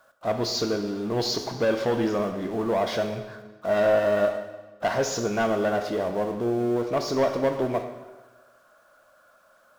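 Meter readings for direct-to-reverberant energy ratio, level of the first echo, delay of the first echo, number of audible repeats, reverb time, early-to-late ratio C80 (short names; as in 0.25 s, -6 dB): 6.5 dB, none, none, none, 1.2 s, 10.0 dB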